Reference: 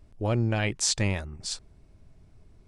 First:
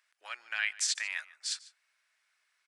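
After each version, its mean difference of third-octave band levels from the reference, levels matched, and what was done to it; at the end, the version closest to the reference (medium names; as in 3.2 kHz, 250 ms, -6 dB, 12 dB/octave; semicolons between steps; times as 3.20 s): 11.5 dB: peak limiter -18 dBFS, peak gain reduction 8 dB; ladder high-pass 1.4 kHz, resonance 45%; on a send: delay 146 ms -20.5 dB; on the sum: trim +7 dB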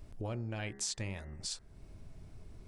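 7.0 dB: de-hum 68.26 Hz, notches 30; compression 3:1, threshold -46 dBFS, peak gain reduction 18 dB; treble shelf 9.6 kHz +4 dB; trim +4 dB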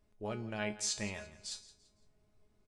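4.5 dB: bass shelf 210 Hz -9 dB; feedback comb 210 Hz, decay 0.3 s, harmonics all, mix 80%; on a send: feedback delay 169 ms, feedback 34%, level -17 dB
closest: third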